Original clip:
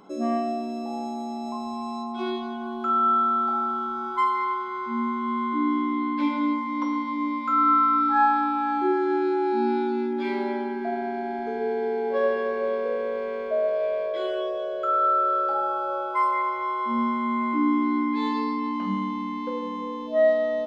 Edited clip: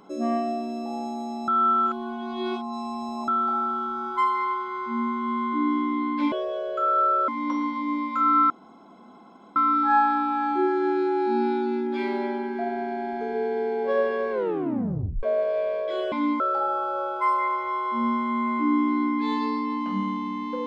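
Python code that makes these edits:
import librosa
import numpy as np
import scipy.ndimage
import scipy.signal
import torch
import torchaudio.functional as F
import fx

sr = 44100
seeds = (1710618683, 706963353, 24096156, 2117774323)

y = fx.edit(x, sr, fx.reverse_span(start_s=1.48, length_s=1.8),
    fx.swap(start_s=6.32, length_s=0.28, other_s=14.38, other_length_s=0.96),
    fx.insert_room_tone(at_s=7.82, length_s=1.06),
    fx.tape_stop(start_s=12.57, length_s=0.92), tone=tone)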